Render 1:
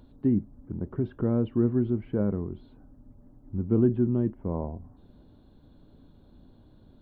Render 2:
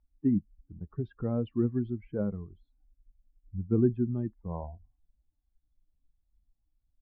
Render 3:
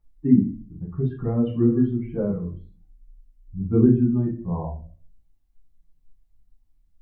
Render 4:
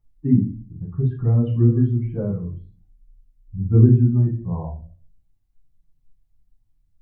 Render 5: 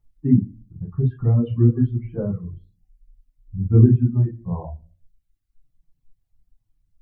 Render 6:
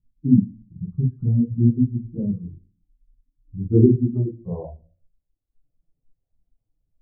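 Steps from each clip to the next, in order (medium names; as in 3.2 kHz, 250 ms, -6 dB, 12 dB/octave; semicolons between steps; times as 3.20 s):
expander on every frequency bin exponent 2; level-controlled noise filter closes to 1.2 kHz, open at -25 dBFS
reverberation RT60 0.40 s, pre-delay 6 ms, DRR -5 dB
peaking EQ 110 Hz +14 dB 0.56 oct; trim -2.5 dB
reverb removal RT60 0.81 s; trim +1 dB
low-pass sweep 210 Hz -> 530 Hz, 1.70–5.01 s; bass shelf 210 Hz -8.5 dB; trim +1 dB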